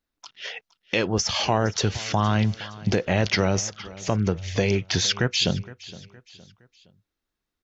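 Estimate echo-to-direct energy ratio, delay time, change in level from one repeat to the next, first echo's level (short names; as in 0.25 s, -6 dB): -18.0 dB, 0.465 s, -7.5 dB, -19.0 dB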